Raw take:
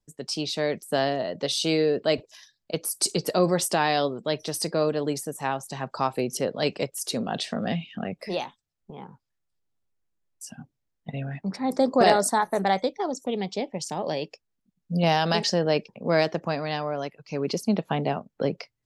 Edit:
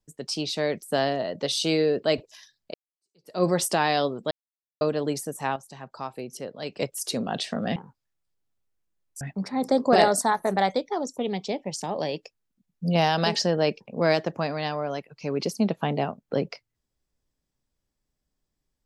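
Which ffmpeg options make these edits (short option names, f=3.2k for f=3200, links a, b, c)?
-filter_complex "[0:a]asplit=8[a][b][c][d][e][f][g][h];[a]atrim=end=2.74,asetpts=PTS-STARTPTS,afade=t=out:st=2.736:d=0.004:c=hsin[i];[b]atrim=start=2.74:end=4.31,asetpts=PTS-STARTPTS,afade=t=in:d=0.69:c=exp,afade=t=out:st=1.566:d=0.004:c=hsin[j];[c]atrim=start=4.31:end=4.81,asetpts=PTS-STARTPTS,volume=0[k];[d]atrim=start=4.81:end=5.562,asetpts=PTS-STARTPTS,afade=t=in:d=0.004:c=hsin[l];[e]atrim=start=5.558:end=6.772,asetpts=PTS-STARTPTS,volume=-9dB[m];[f]atrim=start=6.768:end=7.762[n];[g]atrim=start=9.008:end=10.462[o];[h]atrim=start=11.288[p];[i][j][k][l]concat=n=4:v=0:a=1[q];[q][m]acrossfade=d=0.004:c1=hsin:c2=hsin[r];[r][n]acrossfade=d=0.004:c1=hsin:c2=hsin[s];[s][o]acrossfade=d=0.004:c1=hsin:c2=hsin[t];[t][p]acrossfade=d=0.004:c1=hsin:c2=hsin"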